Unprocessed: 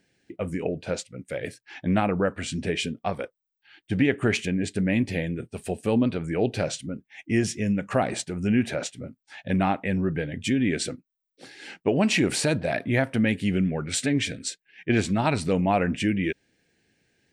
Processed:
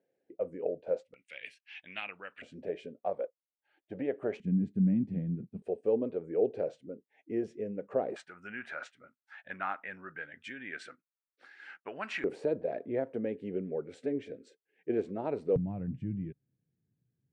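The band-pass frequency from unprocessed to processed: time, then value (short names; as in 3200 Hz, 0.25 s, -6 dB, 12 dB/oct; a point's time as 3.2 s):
band-pass, Q 3.6
530 Hz
from 1.14 s 2700 Hz
from 2.42 s 560 Hz
from 4.4 s 190 Hz
from 5.62 s 460 Hz
from 8.16 s 1400 Hz
from 12.24 s 450 Hz
from 15.56 s 130 Hz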